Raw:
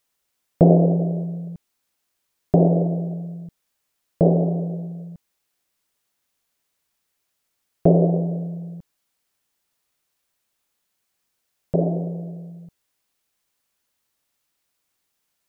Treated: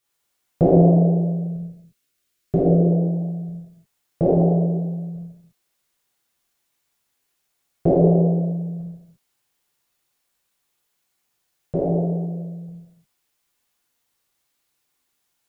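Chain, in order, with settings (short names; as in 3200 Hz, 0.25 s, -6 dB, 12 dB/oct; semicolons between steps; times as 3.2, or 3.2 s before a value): 1.48–2.91 bell 870 Hz -14 dB 0.53 oct; non-linear reverb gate 0.38 s falling, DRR -7.5 dB; gain -6 dB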